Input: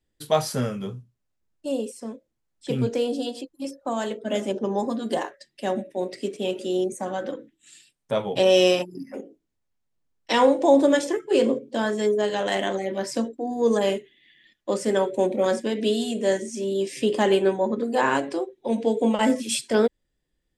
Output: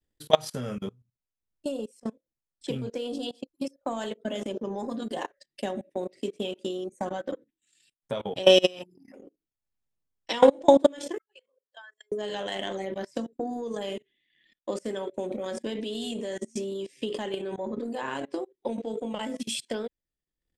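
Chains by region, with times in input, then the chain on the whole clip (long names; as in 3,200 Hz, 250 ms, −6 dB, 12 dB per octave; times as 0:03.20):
0:11.18–0:12.12: expanding power law on the bin magnitudes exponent 1.8 + high-pass filter 1,300 Hz 24 dB per octave
whole clip: dynamic equaliser 3,200 Hz, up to +6 dB, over −45 dBFS, Q 3; output level in coarse steps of 16 dB; transient designer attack +6 dB, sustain −10 dB; level −1 dB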